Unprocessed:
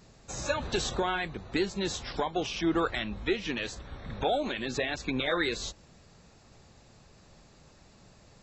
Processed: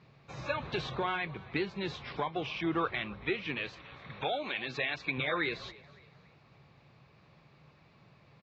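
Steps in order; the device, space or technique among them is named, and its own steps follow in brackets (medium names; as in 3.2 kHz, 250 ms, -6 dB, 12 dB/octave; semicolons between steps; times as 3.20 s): frequency-shifting delay pedal into a guitar cabinet (frequency-shifting echo 280 ms, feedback 40%, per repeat +39 Hz, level -21.5 dB; cabinet simulation 84–4100 Hz, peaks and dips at 140 Hz +10 dB, 230 Hz -3 dB, 1.1 kHz +6 dB, 2.3 kHz +8 dB); 3.73–5.18 s: tilt EQ +2 dB/octave; trim -5 dB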